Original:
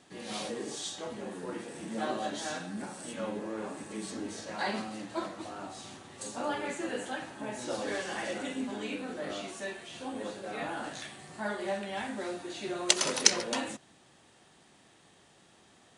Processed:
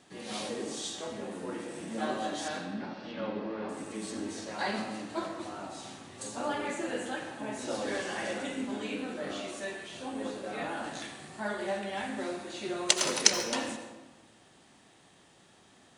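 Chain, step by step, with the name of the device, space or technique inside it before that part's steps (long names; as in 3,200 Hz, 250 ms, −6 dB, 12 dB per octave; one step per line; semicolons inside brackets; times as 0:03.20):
0:02.48–0:03.69: Butterworth low-pass 5,000 Hz 48 dB per octave
saturated reverb return (on a send at −7 dB: convolution reverb RT60 1.2 s, pre-delay 72 ms + soft clipping −24 dBFS, distortion −17 dB)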